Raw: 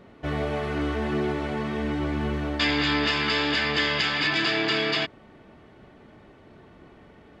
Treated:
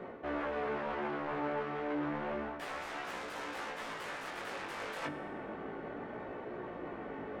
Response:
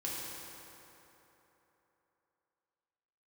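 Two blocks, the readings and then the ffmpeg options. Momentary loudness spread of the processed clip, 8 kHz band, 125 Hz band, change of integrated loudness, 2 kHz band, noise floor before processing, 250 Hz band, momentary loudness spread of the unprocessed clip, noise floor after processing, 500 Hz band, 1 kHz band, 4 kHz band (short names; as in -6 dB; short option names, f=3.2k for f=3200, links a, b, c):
7 LU, -9.5 dB, -18.5 dB, -14.5 dB, -15.0 dB, -52 dBFS, -12.5 dB, 6 LU, -45 dBFS, -8.5 dB, -7.0 dB, -23.5 dB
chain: -filter_complex "[0:a]bandreject=f=50:t=h:w=6,bandreject=f=100:t=h:w=6,bandreject=f=150:t=h:w=6,bandreject=f=200:t=h:w=6,bandreject=f=250:t=h:w=6,bandreject=f=300:t=h:w=6,aeval=exprs='0.266*(cos(1*acos(clip(val(0)/0.266,-1,1)))-cos(1*PI/2))+0.119*(cos(7*acos(clip(val(0)/0.266,-1,1)))-cos(7*PI/2))':c=same,areverse,acompressor=threshold=-39dB:ratio=6,areverse,flanger=delay=16.5:depth=4:speed=0.31,acrossover=split=230 2200:gain=0.178 1 0.126[a][b][c];[a][b][c]amix=inputs=3:normalize=0,asplit=2[d][e];[1:a]atrim=start_sample=2205,asetrate=70560,aresample=44100,lowshelf=f=180:g=9[f];[e][f]afir=irnorm=-1:irlink=0,volume=-7dB[g];[d][g]amix=inputs=2:normalize=0,volume=5.5dB"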